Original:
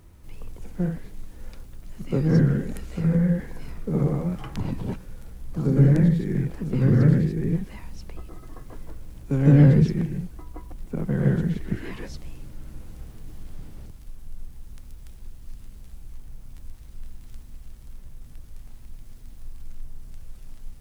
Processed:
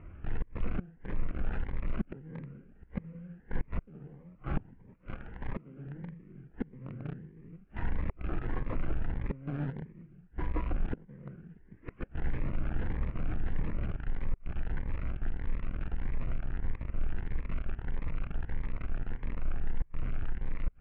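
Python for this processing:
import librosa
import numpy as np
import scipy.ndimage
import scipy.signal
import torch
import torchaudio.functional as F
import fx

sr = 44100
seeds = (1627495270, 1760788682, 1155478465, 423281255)

p1 = fx.cvsd(x, sr, bps=16000)
p2 = p1 + fx.echo_thinned(p1, sr, ms=202, feedback_pct=80, hz=1000.0, wet_db=-22, dry=0)
p3 = fx.gate_flip(p2, sr, shuts_db=-25.0, range_db=-28)
p4 = fx.low_shelf(p3, sr, hz=140.0, db=-9.5, at=(4.94, 5.87))
p5 = fx.quant_companded(p4, sr, bits=2)
p6 = p4 + F.gain(torch.from_numpy(p5), -11.0).numpy()
p7 = scipy.signal.sosfilt(scipy.signal.butter(4, 2200.0, 'lowpass', fs=sr, output='sos'), p6)
p8 = fx.peak_eq(p7, sr, hz=1500.0, db=3.0, octaves=0.33)
p9 = fx.notch_cascade(p8, sr, direction='rising', hz=1.6)
y = F.gain(torch.from_numpy(p9), 3.0).numpy()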